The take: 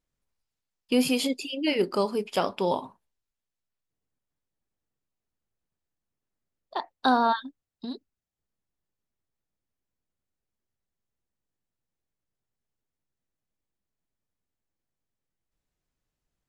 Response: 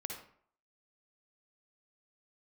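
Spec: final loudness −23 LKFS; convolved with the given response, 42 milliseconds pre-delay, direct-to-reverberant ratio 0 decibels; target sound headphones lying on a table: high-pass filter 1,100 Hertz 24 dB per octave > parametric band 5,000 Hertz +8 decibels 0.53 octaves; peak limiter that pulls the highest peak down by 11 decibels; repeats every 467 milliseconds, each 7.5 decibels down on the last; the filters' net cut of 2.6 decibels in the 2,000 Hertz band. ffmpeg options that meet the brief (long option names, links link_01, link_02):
-filter_complex "[0:a]equalizer=frequency=2000:width_type=o:gain=-4,alimiter=limit=-22.5dB:level=0:latency=1,aecho=1:1:467|934|1401|1868|2335:0.422|0.177|0.0744|0.0312|0.0131,asplit=2[link_01][link_02];[1:a]atrim=start_sample=2205,adelay=42[link_03];[link_02][link_03]afir=irnorm=-1:irlink=0,volume=0.5dB[link_04];[link_01][link_04]amix=inputs=2:normalize=0,highpass=frequency=1100:width=0.5412,highpass=frequency=1100:width=1.3066,equalizer=frequency=5000:width_type=o:width=0.53:gain=8,volume=11.5dB"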